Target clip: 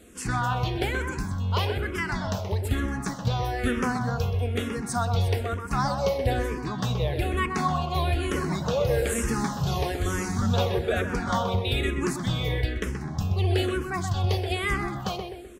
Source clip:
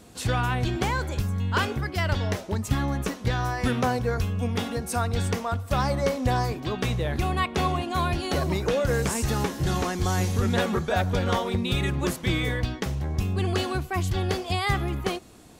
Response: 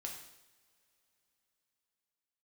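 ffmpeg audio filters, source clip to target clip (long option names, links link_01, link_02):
-filter_complex "[0:a]asplit=2[link_01][link_02];[link_02]adelay=127,lowpass=frequency=2700:poles=1,volume=-6dB,asplit=2[link_03][link_04];[link_04]adelay=127,lowpass=frequency=2700:poles=1,volume=0.46,asplit=2[link_05][link_06];[link_06]adelay=127,lowpass=frequency=2700:poles=1,volume=0.46,asplit=2[link_07][link_08];[link_08]adelay=127,lowpass=frequency=2700:poles=1,volume=0.46,asplit=2[link_09][link_10];[link_10]adelay=127,lowpass=frequency=2700:poles=1,volume=0.46,asplit=2[link_11][link_12];[link_12]adelay=127,lowpass=frequency=2700:poles=1,volume=0.46[link_13];[link_01][link_03][link_05][link_07][link_09][link_11][link_13]amix=inputs=7:normalize=0,asplit=2[link_14][link_15];[1:a]atrim=start_sample=2205[link_16];[link_15][link_16]afir=irnorm=-1:irlink=0,volume=-11.5dB[link_17];[link_14][link_17]amix=inputs=2:normalize=0,asplit=2[link_18][link_19];[link_19]afreqshift=-1.1[link_20];[link_18][link_20]amix=inputs=2:normalize=1"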